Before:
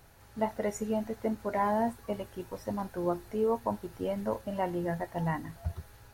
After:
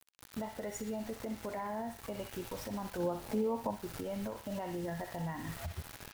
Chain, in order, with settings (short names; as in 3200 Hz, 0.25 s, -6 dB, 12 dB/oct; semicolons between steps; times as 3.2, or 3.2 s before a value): bit-crush 8-bit; compressor 10:1, threshold -37 dBFS, peak gain reduction 13.5 dB; on a send: narrowing echo 62 ms, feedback 67%, band-pass 2900 Hz, level -5 dB; on the sum: limiter -35.5 dBFS, peak gain reduction 9 dB; 2.98–3.7 small resonant body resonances 220/530/840 Hz, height 7 dB -> 10 dB, ringing for 20 ms; gain +4.5 dB